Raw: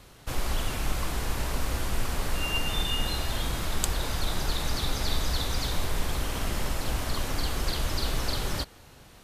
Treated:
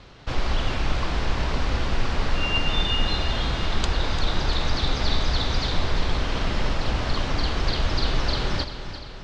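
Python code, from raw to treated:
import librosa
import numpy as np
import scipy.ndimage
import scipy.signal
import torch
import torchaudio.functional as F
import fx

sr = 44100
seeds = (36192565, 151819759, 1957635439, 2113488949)

p1 = scipy.signal.sosfilt(scipy.signal.butter(4, 5100.0, 'lowpass', fs=sr, output='sos'), x)
p2 = p1 + fx.echo_feedback(p1, sr, ms=346, feedback_pct=55, wet_db=-11.0, dry=0)
y = p2 * librosa.db_to_amplitude(5.0)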